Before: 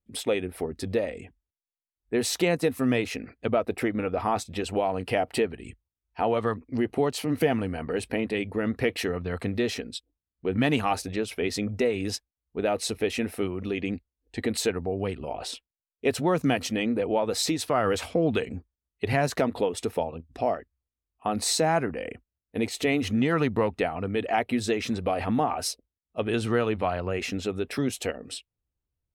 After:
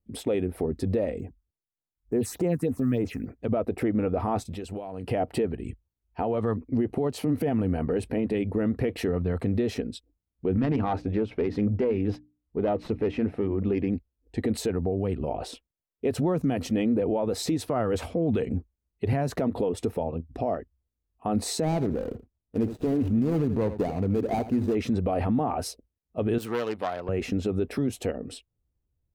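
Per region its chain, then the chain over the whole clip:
0:01.19–0:03.36: one scale factor per block 7 bits + all-pass phaser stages 4, 3.4 Hz, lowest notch 490–4,300 Hz
0:04.45–0:05.04: high-shelf EQ 2,700 Hz +9.5 dB + downward compressor, threshold −37 dBFS
0:10.55–0:13.89: phase distortion by the signal itself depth 0.18 ms + low-pass filter 2,900 Hz + mains-hum notches 60/120/180/240/300 Hz
0:21.63–0:24.75: running median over 41 samples + parametric band 9,100 Hz +5 dB 2.5 octaves + single-tap delay 81 ms −15 dB
0:26.38–0:27.09: phase distortion by the signal itself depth 0.24 ms + high-pass filter 990 Hz 6 dB per octave + high-shelf EQ 6,900 Hz +8.5 dB
whole clip: tilt shelving filter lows +8 dB; brickwall limiter −17.5 dBFS; high-shelf EQ 11,000 Hz +6 dB

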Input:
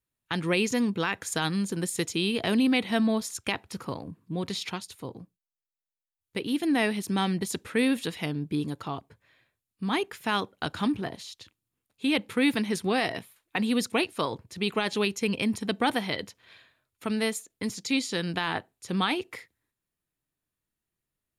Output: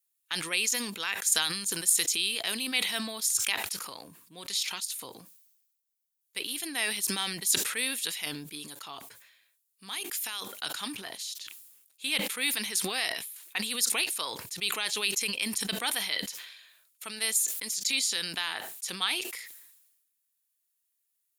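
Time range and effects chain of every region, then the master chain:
0:09.89–0:10.48: high-shelf EQ 3,800 Hz +7.5 dB + mains-hum notches 50/100/150/200/250/300/350 Hz + downward compressor, threshold −29 dBFS
whole clip: first difference; level that may fall only so fast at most 52 dB per second; level +8.5 dB

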